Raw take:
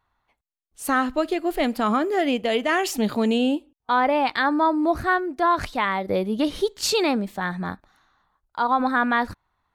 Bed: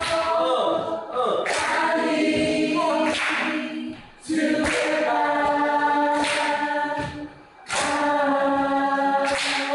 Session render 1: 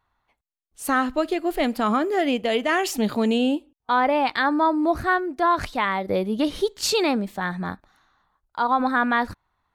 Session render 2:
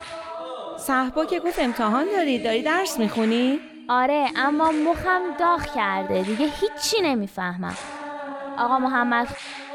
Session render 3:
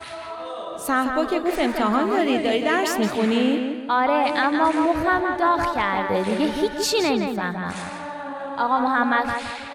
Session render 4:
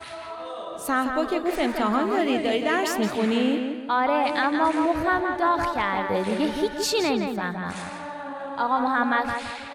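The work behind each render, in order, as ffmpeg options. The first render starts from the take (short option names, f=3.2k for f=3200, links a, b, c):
-af anull
-filter_complex "[1:a]volume=-12dB[a];[0:a][a]amix=inputs=2:normalize=0"
-filter_complex "[0:a]asplit=2[a][b];[b]adelay=169,lowpass=f=3.7k:p=1,volume=-5.5dB,asplit=2[c][d];[d]adelay=169,lowpass=f=3.7k:p=1,volume=0.42,asplit=2[e][f];[f]adelay=169,lowpass=f=3.7k:p=1,volume=0.42,asplit=2[g][h];[h]adelay=169,lowpass=f=3.7k:p=1,volume=0.42,asplit=2[i][j];[j]adelay=169,lowpass=f=3.7k:p=1,volume=0.42[k];[a][c][e][g][i][k]amix=inputs=6:normalize=0"
-af "volume=-2.5dB"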